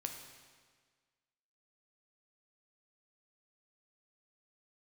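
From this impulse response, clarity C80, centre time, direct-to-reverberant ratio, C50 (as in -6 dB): 7.0 dB, 37 ms, 3.5 dB, 5.5 dB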